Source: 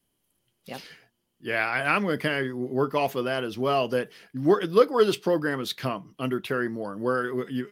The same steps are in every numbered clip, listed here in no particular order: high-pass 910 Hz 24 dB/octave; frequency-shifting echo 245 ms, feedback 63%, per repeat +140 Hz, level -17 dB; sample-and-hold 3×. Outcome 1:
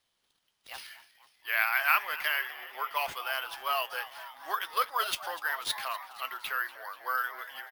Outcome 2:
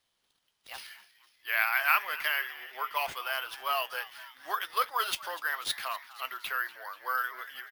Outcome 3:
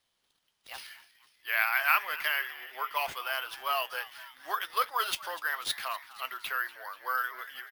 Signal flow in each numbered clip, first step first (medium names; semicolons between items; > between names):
frequency-shifting echo > high-pass > sample-and-hold; high-pass > sample-and-hold > frequency-shifting echo; high-pass > frequency-shifting echo > sample-and-hold